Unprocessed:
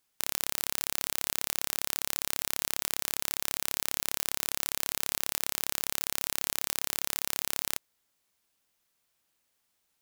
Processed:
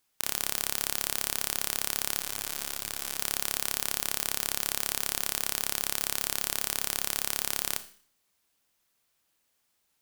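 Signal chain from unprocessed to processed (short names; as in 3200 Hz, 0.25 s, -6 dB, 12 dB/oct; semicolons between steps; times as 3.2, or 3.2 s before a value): Schroeder reverb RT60 0.51 s, combs from 26 ms, DRR 11 dB; 2.19–3.17 detuned doubles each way 29 cents -> 43 cents; gain +1.5 dB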